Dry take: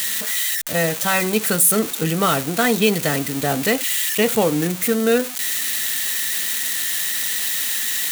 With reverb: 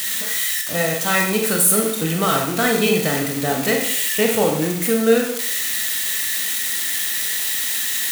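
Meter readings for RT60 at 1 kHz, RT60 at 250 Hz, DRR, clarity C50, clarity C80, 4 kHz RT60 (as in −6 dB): 0.65 s, 0.70 s, 1.0 dB, 4.5 dB, 8.0 dB, 0.65 s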